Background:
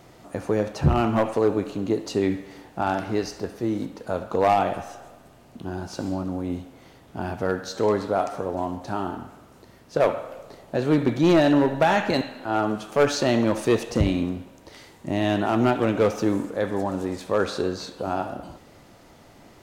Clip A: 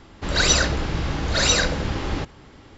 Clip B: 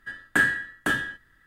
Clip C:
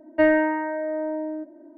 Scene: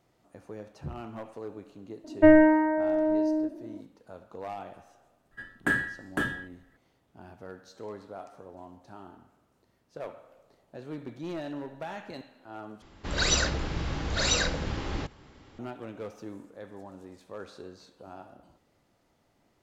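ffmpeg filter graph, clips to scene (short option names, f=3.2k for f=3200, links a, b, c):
-filter_complex "[0:a]volume=-19dB[a];[3:a]aemphasis=mode=reproduction:type=riaa[b];[2:a]tiltshelf=f=1.1k:g=4.5[c];[a]asplit=2[d][e];[d]atrim=end=12.824[f];[1:a]atrim=end=2.77,asetpts=PTS-STARTPTS,volume=-7dB[g];[e]atrim=start=15.586[h];[b]atrim=end=1.77,asetpts=PTS-STARTPTS,volume=-1dB,afade=t=in:d=0.004:c=hsin,afade=t=out:st=1.766:d=0.004:c=hsin,adelay=2040[i];[c]atrim=end=1.46,asetpts=PTS-STARTPTS,volume=-4.5dB,afade=t=in:d=0.004:c=hsin,afade=t=out:st=1.456:d=0.004:c=hsin,adelay=5310[j];[f][g]acrossfade=d=0.004:c1=hsin:c2=hsin[k];[k][h]acrossfade=d=0.004:c1=hsin:c2=hsin[l];[l][i][j]amix=inputs=3:normalize=0"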